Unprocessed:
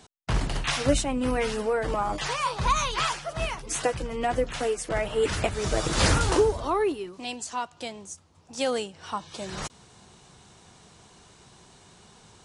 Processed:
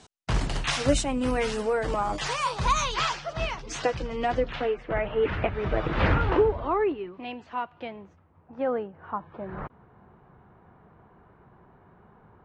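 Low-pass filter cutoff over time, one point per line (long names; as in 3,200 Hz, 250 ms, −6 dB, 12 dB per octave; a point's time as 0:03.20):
low-pass filter 24 dB per octave
0:02.64 9,200 Hz
0:03.22 5,700 Hz
0:04.30 5,700 Hz
0:04.77 2,600 Hz
0:07.83 2,600 Hz
0:08.65 1,600 Hz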